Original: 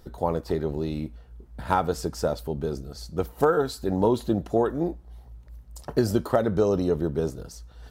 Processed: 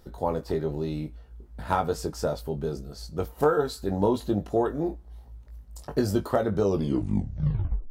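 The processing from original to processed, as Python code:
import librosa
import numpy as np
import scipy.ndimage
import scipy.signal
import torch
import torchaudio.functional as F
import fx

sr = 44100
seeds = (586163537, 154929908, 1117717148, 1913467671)

y = fx.tape_stop_end(x, sr, length_s=1.28)
y = fx.doubler(y, sr, ms=20.0, db=-6.5)
y = F.gain(torch.from_numpy(y), -2.5).numpy()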